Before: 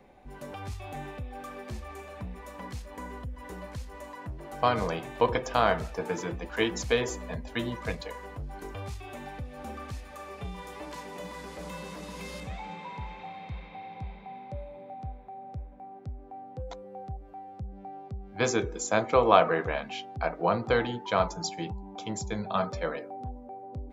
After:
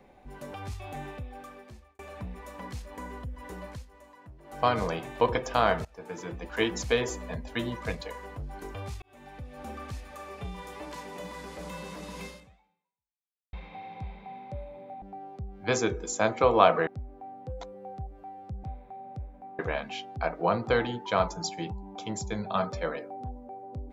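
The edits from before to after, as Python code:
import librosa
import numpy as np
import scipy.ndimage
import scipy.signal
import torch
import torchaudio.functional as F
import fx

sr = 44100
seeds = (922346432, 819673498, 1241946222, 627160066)

y = fx.edit(x, sr, fx.fade_out_span(start_s=1.12, length_s=0.87),
    fx.fade_down_up(start_s=3.7, length_s=0.9, db=-10.5, fade_s=0.17),
    fx.fade_in_from(start_s=5.85, length_s=0.73, floor_db=-21.0),
    fx.fade_in_span(start_s=9.02, length_s=0.86, curve='qsin'),
    fx.fade_out_span(start_s=12.25, length_s=1.28, curve='exp'),
    fx.swap(start_s=15.02, length_s=0.95, other_s=17.74, other_length_s=1.85), tone=tone)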